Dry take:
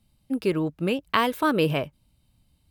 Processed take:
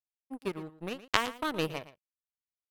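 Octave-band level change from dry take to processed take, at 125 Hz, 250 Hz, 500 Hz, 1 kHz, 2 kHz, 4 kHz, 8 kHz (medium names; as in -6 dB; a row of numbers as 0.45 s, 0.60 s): -13.0 dB, -13.0 dB, -11.0 dB, -8.5 dB, -5.5 dB, -3.5 dB, +1.5 dB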